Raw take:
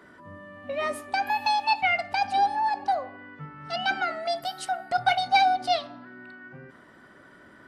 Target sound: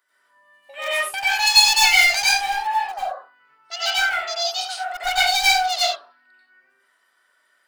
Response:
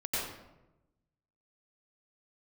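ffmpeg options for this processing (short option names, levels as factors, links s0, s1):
-filter_complex "[0:a]highpass=760,afwtdn=0.0141,asettb=1/sr,asplit=3[s0][s1][s2];[s0]atrim=end=0.534[s3];[s1]atrim=start=0.53:end=2.52,asetpts=PTS-STARTPTS,afade=t=in:d=0.004:c=qsin,afade=t=out:st=1.986:d=0.004:c=qsin,highshelf=f=3100:g=9.5[s4];[s2]atrim=start=2.516[s5];[s3][s4]acrossfade=d=0.004:c1=hsin:c2=qsin[s6];[s6][s5]acrossfade=d=0.004:c1=qsin:c2=hsin,aeval=exprs='clip(val(0),-1,0.075)':c=same,crystalizer=i=7:c=0[s7];[1:a]atrim=start_sample=2205,afade=t=out:st=0.25:d=0.01,atrim=end_sample=11466[s8];[s7][s8]afir=irnorm=-1:irlink=0,volume=0.631"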